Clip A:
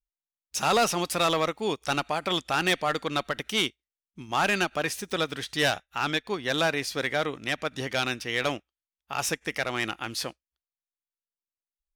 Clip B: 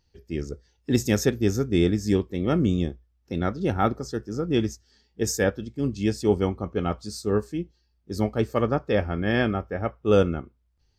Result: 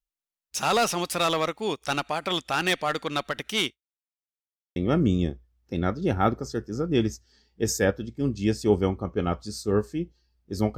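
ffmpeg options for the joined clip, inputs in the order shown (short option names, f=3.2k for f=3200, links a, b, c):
-filter_complex "[0:a]apad=whole_dur=10.77,atrim=end=10.77,asplit=2[a][b];[a]atrim=end=4.16,asetpts=PTS-STARTPTS,afade=t=out:st=3.73:d=0.43:c=exp[c];[b]atrim=start=4.16:end=4.76,asetpts=PTS-STARTPTS,volume=0[d];[1:a]atrim=start=2.35:end=8.36,asetpts=PTS-STARTPTS,afade=t=in:d=0.004:c=hsin[e];[c][d][e]concat=n=3:v=0:a=1"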